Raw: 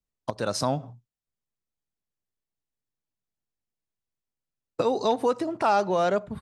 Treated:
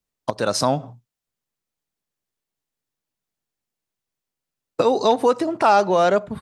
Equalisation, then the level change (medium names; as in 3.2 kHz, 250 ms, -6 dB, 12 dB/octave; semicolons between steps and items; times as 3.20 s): bass shelf 120 Hz -8 dB; +7.0 dB